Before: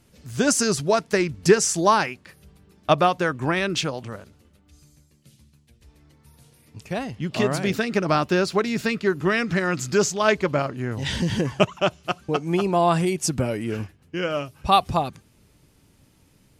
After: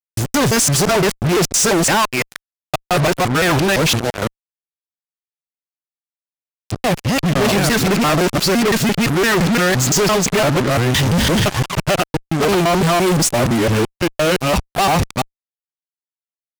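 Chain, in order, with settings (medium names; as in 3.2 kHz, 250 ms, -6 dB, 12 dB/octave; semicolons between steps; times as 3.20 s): time reversed locally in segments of 171 ms; Chebyshev shaper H 2 -33 dB, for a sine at -2.5 dBFS; fuzz box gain 42 dB, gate -38 dBFS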